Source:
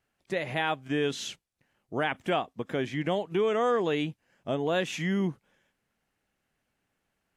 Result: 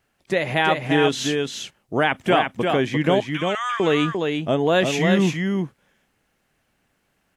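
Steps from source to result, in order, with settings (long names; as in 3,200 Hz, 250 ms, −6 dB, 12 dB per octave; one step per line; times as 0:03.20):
0:03.20–0:03.80: inverse Chebyshev high-pass filter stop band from 460 Hz, stop band 50 dB
on a send: single-tap delay 348 ms −4.5 dB
on the sum: level +9 dB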